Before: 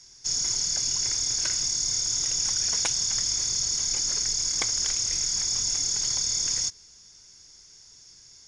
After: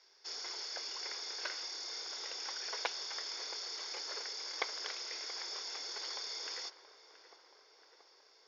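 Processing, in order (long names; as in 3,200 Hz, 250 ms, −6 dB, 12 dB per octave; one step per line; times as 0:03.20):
elliptic band-pass filter 420–4,600 Hz, stop band 40 dB
high-shelf EQ 2,700 Hz −10 dB
tape delay 677 ms, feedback 76%, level −13 dB, low-pass 1,900 Hz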